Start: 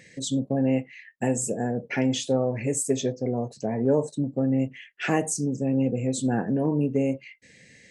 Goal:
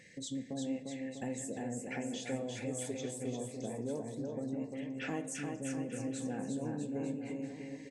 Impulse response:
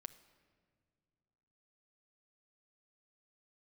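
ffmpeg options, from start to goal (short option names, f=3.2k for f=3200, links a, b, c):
-filter_complex "[0:a]acompressor=threshold=-38dB:ratio=2,aecho=1:1:350|647.5|900.4|1115|1298:0.631|0.398|0.251|0.158|0.1[a];[1:a]atrim=start_sample=2205,asetrate=74970,aresample=44100[b];[a][b]afir=irnorm=-1:irlink=0,volume=3.5dB"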